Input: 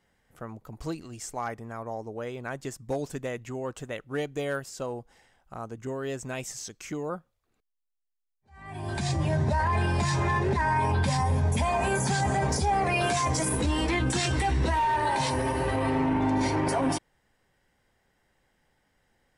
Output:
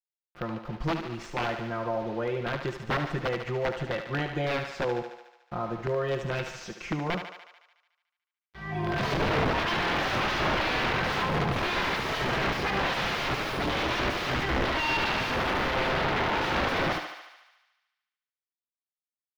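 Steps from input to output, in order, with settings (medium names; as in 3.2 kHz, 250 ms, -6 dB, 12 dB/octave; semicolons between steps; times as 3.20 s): treble shelf 5.6 kHz +5 dB; comb 5.7 ms, depth 91%; de-hum 302.8 Hz, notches 37; in parallel at -1 dB: compression 16:1, threshold -34 dBFS, peak gain reduction 17 dB; on the sum: bit crusher 7-bit; integer overflow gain 19.5 dB; distance through air 290 m; on a send: thinning echo 73 ms, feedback 68%, level -7 dB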